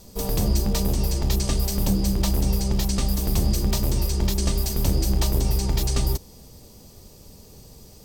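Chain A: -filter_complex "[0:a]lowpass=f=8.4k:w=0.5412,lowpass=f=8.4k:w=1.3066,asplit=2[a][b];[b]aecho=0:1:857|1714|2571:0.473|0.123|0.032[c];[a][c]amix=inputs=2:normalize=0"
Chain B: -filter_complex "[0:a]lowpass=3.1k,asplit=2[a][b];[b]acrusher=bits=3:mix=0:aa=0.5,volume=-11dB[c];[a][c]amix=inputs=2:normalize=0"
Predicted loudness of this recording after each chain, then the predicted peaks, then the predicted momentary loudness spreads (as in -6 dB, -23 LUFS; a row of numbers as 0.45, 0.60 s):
-24.0, -22.5 LUFS; -8.5, -8.5 dBFS; 10, 2 LU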